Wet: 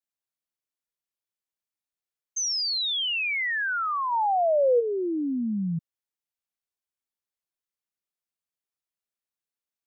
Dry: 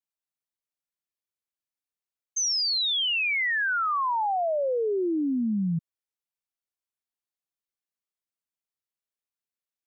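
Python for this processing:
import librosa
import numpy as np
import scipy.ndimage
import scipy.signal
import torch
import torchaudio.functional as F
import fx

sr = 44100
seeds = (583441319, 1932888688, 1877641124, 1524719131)

y = fx.peak_eq(x, sr, hz=290.0, db=12.0, octaves=2.1, at=(4.11, 4.79), fade=0.02)
y = y * librosa.db_to_amplitude(-1.5)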